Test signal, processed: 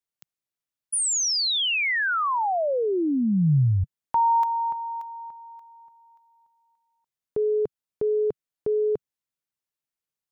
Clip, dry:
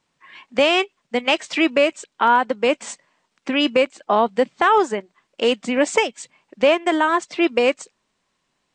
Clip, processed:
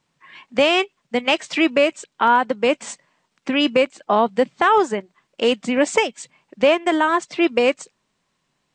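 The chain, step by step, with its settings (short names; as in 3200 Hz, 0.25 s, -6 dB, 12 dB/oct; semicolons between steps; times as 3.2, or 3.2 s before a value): bell 140 Hz +6 dB 0.96 oct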